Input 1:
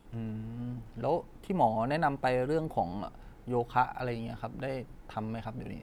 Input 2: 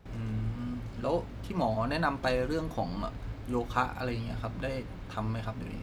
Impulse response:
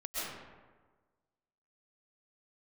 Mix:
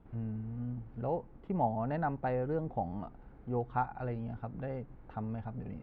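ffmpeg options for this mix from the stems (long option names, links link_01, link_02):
-filter_complex "[0:a]equalizer=frequency=79:width_type=o:width=2.6:gain=7,volume=-5.5dB,asplit=2[link_01][link_02];[1:a]volume=-13dB[link_03];[link_02]apad=whole_len=256684[link_04];[link_03][link_04]sidechaincompress=threshold=-40dB:ratio=8:attack=16:release=795[link_05];[link_01][link_05]amix=inputs=2:normalize=0,lowpass=1600"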